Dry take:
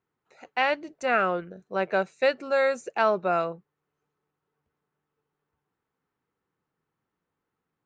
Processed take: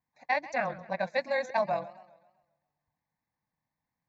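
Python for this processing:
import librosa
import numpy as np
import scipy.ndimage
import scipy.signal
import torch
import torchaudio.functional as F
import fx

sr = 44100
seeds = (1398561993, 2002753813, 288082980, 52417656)

y = fx.stretch_grains(x, sr, factor=0.52, grain_ms=44.0)
y = fx.fixed_phaser(y, sr, hz=2000.0, stages=8)
y = fx.echo_warbled(y, sr, ms=132, feedback_pct=46, rate_hz=2.8, cents=159, wet_db=-17.5)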